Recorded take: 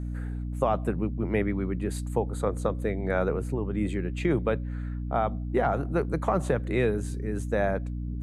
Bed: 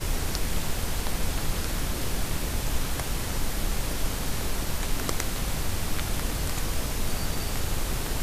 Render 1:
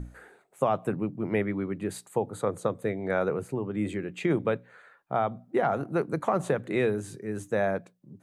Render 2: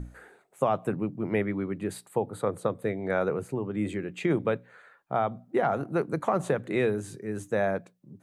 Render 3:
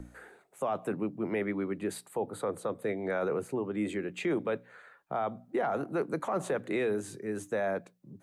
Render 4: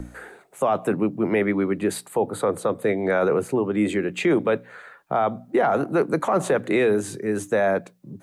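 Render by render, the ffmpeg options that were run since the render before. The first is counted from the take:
-af "bandreject=f=60:t=h:w=6,bandreject=f=120:t=h:w=6,bandreject=f=180:t=h:w=6,bandreject=f=240:t=h:w=6,bandreject=f=300:t=h:w=6"
-filter_complex "[0:a]asettb=1/sr,asplit=3[s0][s1][s2];[s0]atrim=end=1.944[s3];[s1]atrim=start=1.94:end=2.84,asetpts=PTS-STARTPTS,afade=t=in:d=0.004:c=qsin,afade=t=out:st=0.896:d=0.004:c=qsin,equalizer=f=6600:t=o:w=0.42:g=-8[s4];[s2]atrim=start=2.836[s5];[s3][s4]acrossfade=d=0.004:c1=hsin:c2=qsin[s6];[s6][s5]acrossfade=d=0.004:c1=qsin:c2=hsin"
-filter_complex "[0:a]acrossover=split=200|480|1600[s0][s1][s2][s3];[s0]acompressor=threshold=0.00316:ratio=4[s4];[s4][s1][s2][s3]amix=inputs=4:normalize=0,alimiter=limit=0.075:level=0:latency=1:release=11"
-af "volume=3.35"

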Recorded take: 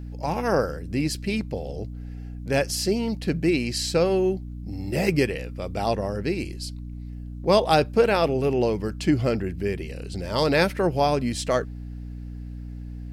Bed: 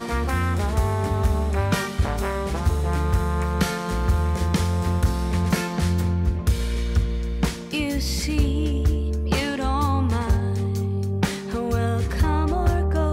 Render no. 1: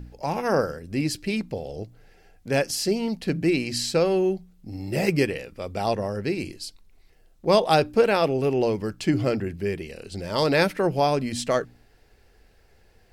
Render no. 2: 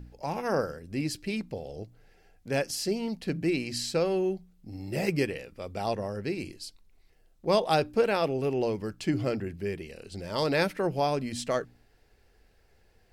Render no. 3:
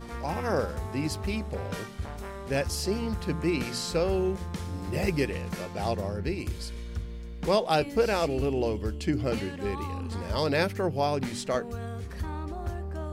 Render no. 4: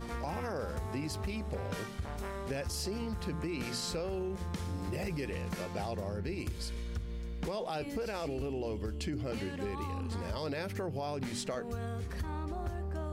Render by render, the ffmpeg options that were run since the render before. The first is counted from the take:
-af "bandreject=f=60:t=h:w=4,bandreject=f=120:t=h:w=4,bandreject=f=180:t=h:w=4,bandreject=f=240:t=h:w=4,bandreject=f=300:t=h:w=4"
-af "volume=0.531"
-filter_complex "[1:a]volume=0.211[s0];[0:a][s0]amix=inputs=2:normalize=0"
-af "alimiter=limit=0.0708:level=0:latency=1:release=19,acompressor=threshold=0.0224:ratio=6"

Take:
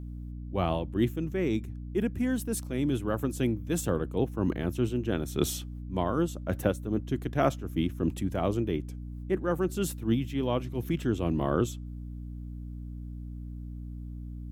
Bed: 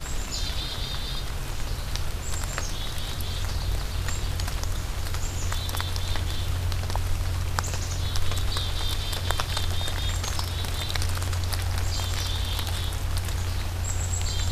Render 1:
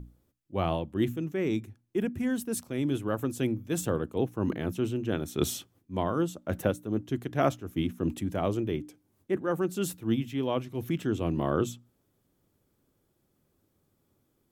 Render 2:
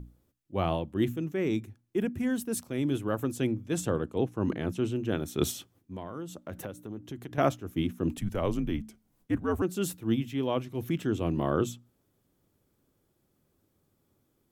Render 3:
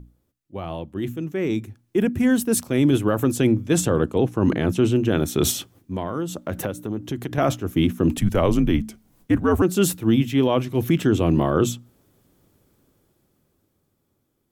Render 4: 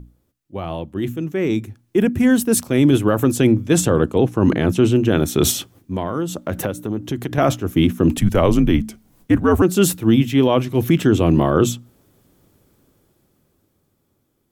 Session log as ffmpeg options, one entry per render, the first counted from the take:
-af "bandreject=f=60:t=h:w=6,bandreject=f=120:t=h:w=6,bandreject=f=180:t=h:w=6,bandreject=f=240:t=h:w=6,bandreject=f=300:t=h:w=6"
-filter_complex "[0:a]asettb=1/sr,asplit=3[s0][s1][s2];[s0]atrim=end=3.374[s3];[s1]atrim=start=3.37:end=4.92,asetpts=PTS-STARTPTS,afade=t=in:d=0.004:c=qsin,afade=t=out:st=1.546:d=0.004:c=qsin,lowpass=10000[s4];[s2]atrim=start=4.916[s5];[s3][s4]acrossfade=d=0.004:c1=hsin:c2=qsin[s6];[s6][s5]acrossfade=d=0.004:c1=qsin:c2=hsin,asettb=1/sr,asplit=3[s7][s8][s9];[s7]atrim=end=5.514[s10];[s8]atrim=start=5.51:end=7.38,asetpts=PTS-STARTPTS,afade=t=in:d=0.004:c=qsin,afade=t=out:st=1.866:d=0.004:c=qsin,acompressor=threshold=0.0158:ratio=4:attack=3.2:release=140:knee=1:detection=peak[s11];[s9]atrim=start=7.376[s12];[s10][s11]acrossfade=d=0.004:c1=hsin:c2=qsin[s13];[s13][s12]acrossfade=d=0.004:c1=qsin:c2=hsin,asettb=1/sr,asplit=3[s14][s15][s16];[s14]atrim=end=8.174[s17];[s15]atrim=start=8.17:end=9.62,asetpts=PTS-STARTPTS,afade=t=in:d=0.004:c=qsin,afade=t=out:st=1.446:d=0.004:c=qsin,afreqshift=-82[s18];[s16]atrim=start=9.616[s19];[s17][s18]acrossfade=d=0.004:c1=hsin:c2=qsin[s20];[s20][s19]acrossfade=d=0.004:c1=qsin:c2=hsin"
-af "alimiter=limit=0.0891:level=0:latency=1:release=19,dynaudnorm=f=200:g=17:m=3.98"
-af "volume=1.58"

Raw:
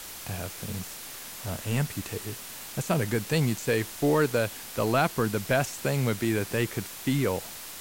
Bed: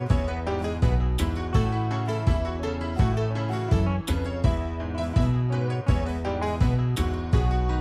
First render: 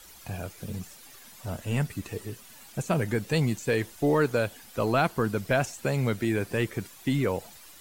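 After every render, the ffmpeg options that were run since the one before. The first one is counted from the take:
-af "afftdn=nr=12:nf=-41"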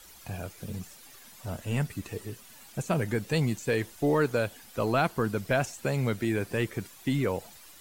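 -af "volume=0.841"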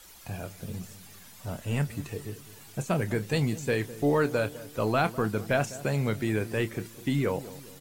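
-filter_complex "[0:a]asplit=2[s0][s1];[s1]adelay=28,volume=0.237[s2];[s0][s2]amix=inputs=2:normalize=0,asplit=2[s3][s4];[s4]adelay=204,lowpass=f=820:p=1,volume=0.178,asplit=2[s5][s6];[s6]adelay=204,lowpass=f=820:p=1,volume=0.5,asplit=2[s7][s8];[s8]adelay=204,lowpass=f=820:p=1,volume=0.5,asplit=2[s9][s10];[s10]adelay=204,lowpass=f=820:p=1,volume=0.5,asplit=2[s11][s12];[s12]adelay=204,lowpass=f=820:p=1,volume=0.5[s13];[s3][s5][s7][s9][s11][s13]amix=inputs=6:normalize=0"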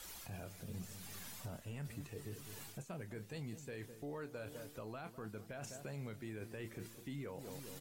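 -af "areverse,acompressor=threshold=0.0178:ratio=6,areverse,alimiter=level_in=4.47:limit=0.0631:level=0:latency=1:release=357,volume=0.224"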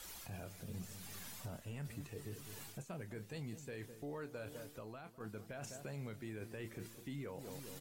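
-filter_complex "[0:a]asplit=2[s0][s1];[s0]atrim=end=5.2,asetpts=PTS-STARTPTS,afade=t=out:st=4.59:d=0.61:silence=0.446684[s2];[s1]atrim=start=5.2,asetpts=PTS-STARTPTS,afade=t=in:d=0.004:c=hsin:silence=0.446684[s3];[s2][s3]concat=n=2:v=0:a=1"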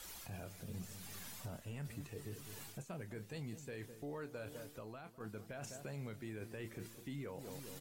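-af anull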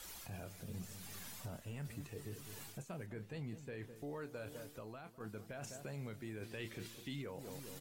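-filter_complex "[0:a]asettb=1/sr,asplit=3[s0][s1][s2];[s0]atrim=end=1.614[s3];[s1]atrim=start=1.61:end=2.22,asetpts=PTS-STARTPTS,afade=t=in:d=0.004:c=qsin,afade=t=out:st=0.606:d=0.004:c=qsin,acrusher=bits=8:mode=log:mix=0:aa=0.000001[s4];[s2]atrim=start=2.216[s5];[s3][s4]acrossfade=d=0.004:c1=hsin:c2=qsin[s6];[s6][s5]acrossfade=d=0.004:c1=qsin:c2=hsin,asettb=1/sr,asplit=3[s7][s8][s9];[s7]atrim=end=3.064[s10];[s8]atrim=start=3.06:end=3.96,asetpts=PTS-STARTPTS,afade=t=in:d=0.004:c=qsin,afade=t=out:st=0.896:d=0.004:c=qsin,bass=f=250:g=1,treble=f=4000:g=-9[s11];[s9]atrim=start=3.956[s12];[s10][s11]acrossfade=d=0.004:c1=hsin:c2=qsin[s13];[s13][s12]acrossfade=d=0.004:c1=qsin:c2=hsin,asettb=1/sr,asplit=3[s14][s15][s16];[s14]atrim=end=6.434[s17];[s15]atrim=start=6.43:end=7.22,asetpts=PTS-STARTPTS,afade=t=in:d=0.004:c=qsin,afade=t=out:st=0.786:d=0.004:c=qsin,equalizer=f=3500:w=1:g=9.5[s18];[s16]atrim=start=7.216[s19];[s17][s18]acrossfade=d=0.004:c1=hsin:c2=qsin[s20];[s20][s19]acrossfade=d=0.004:c1=qsin:c2=hsin"

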